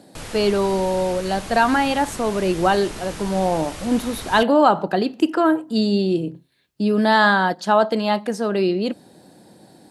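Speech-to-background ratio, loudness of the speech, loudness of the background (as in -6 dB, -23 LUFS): 14.5 dB, -20.0 LUFS, -34.5 LUFS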